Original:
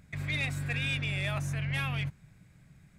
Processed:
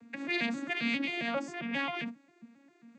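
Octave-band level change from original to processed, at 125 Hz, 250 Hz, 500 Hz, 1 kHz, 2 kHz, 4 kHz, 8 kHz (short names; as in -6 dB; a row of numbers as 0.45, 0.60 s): -21.0, +5.0, +5.5, +4.5, 0.0, -1.0, -8.0 dB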